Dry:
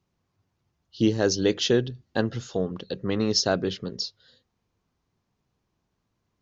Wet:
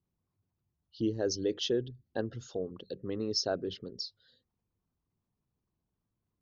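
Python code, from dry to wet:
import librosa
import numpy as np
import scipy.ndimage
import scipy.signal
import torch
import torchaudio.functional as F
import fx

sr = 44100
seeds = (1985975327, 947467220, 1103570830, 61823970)

y = fx.envelope_sharpen(x, sr, power=1.5)
y = fx.dynamic_eq(y, sr, hz=180.0, q=1.9, threshold_db=-40.0, ratio=4.0, max_db=-6)
y = y * 10.0 ** (-8.0 / 20.0)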